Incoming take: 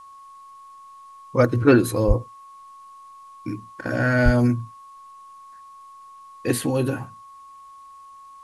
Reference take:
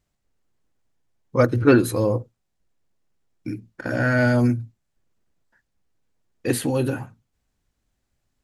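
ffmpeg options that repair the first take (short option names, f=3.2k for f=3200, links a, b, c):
-filter_complex "[0:a]bandreject=f=1.1k:w=30,asplit=3[a][b][c];[a]afade=t=out:st=2.07:d=0.02[d];[b]highpass=f=140:w=0.5412,highpass=f=140:w=1.3066,afade=t=in:st=2.07:d=0.02,afade=t=out:st=2.19:d=0.02[e];[c]afade=t=in:st=2.19:d=0.02[f];[d][e][f]amix=inputs=3:normalize=0,asplit=3[g][h][i];[g]afade=t=out:st=4.24:d=0.02[j];[h]highpass=f=140:w=0.5412,highpass=f=140:w=1.3066,afade=t=in:st=4.24:d=0.02,afade=t=out:st=4.36:d=0.02[k];[i]afade=t=in:st=4.36:d=0.02[l];[j][k][l]amix=inputs=3:normalize=0,agate=range=-21dB:threshold=-37dB"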